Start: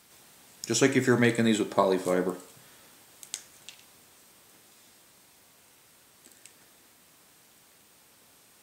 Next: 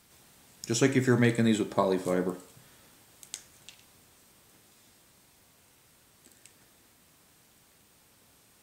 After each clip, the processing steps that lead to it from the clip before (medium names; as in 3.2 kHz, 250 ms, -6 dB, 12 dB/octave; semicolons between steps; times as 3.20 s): bass shelf 150 Hz +11 dB; trim -3.5 dB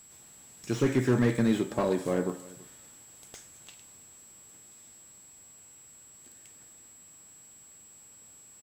whistle 7.7 kHz -52 dBFS; delay 330 ms -22 dB; slew-rate limiter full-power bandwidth 46 Hz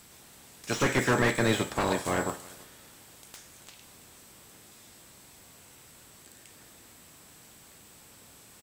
spectral peaks clipped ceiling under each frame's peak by 18 dB